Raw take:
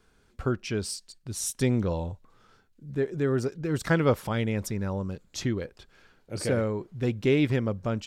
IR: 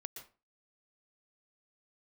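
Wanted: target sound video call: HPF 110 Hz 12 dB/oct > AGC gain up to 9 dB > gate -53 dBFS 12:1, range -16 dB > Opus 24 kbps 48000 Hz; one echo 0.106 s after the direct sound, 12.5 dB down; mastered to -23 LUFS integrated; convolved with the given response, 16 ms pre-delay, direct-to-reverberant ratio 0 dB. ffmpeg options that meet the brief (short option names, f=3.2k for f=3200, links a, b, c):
-filter_complex "[0:a]aecho=1:1:106:0.237,asplit=2[a][b];[1:a]atrim=start_sample=2205,adelay=16[c];[b][c]afir=irnorm=-1:irlink=0,volume=3.5dB[d];[a][d]amix=inputs=2:normalize=0,highpass=110,dynaudnorm=m=9dB,agate=range=-16dB:threshold=-53dB:ratio=12,volume=3dB" -ar 48000 -c:a libopus -b:a 24k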